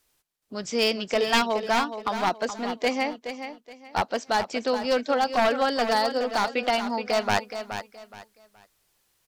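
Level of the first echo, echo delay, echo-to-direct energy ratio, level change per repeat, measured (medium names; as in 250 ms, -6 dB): -9.5 dB, 422 ms, -9.0 dB, -11.5 dB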